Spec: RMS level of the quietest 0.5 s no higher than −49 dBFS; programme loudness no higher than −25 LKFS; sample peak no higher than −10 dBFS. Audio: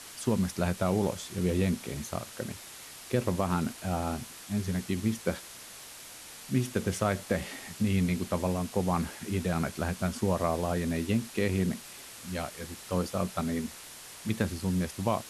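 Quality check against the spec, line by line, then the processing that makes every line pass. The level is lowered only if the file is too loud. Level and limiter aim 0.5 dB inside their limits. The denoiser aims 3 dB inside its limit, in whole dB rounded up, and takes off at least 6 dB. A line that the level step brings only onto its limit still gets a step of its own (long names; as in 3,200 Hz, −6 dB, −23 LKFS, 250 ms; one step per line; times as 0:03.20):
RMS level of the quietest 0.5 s −47 dBFS: out of spec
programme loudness −31.5 LKFS: in spec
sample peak −13.5 dBFS: in spec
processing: broadband denoise 6 dB, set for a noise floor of −47 dBFS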